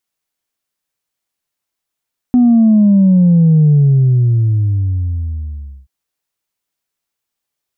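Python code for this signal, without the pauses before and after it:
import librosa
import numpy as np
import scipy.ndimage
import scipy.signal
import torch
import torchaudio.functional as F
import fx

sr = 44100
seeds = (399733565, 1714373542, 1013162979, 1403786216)

y = fx.sub_drop(sr, level_db=-6.0, start_hz=250.0, length_s=3.53, drive_db=0, fade_s=2.16, end_hz=65.0)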